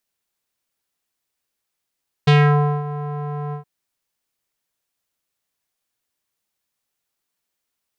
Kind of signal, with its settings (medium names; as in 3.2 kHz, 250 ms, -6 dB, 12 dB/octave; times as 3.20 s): synth note square D3 12 dB/octave, low-pass 1 kHz, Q 2, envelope 2 oct, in 0.30 s, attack 10 ms, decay 0.55 s, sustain -16 dB, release 0.11 s, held 1.26 s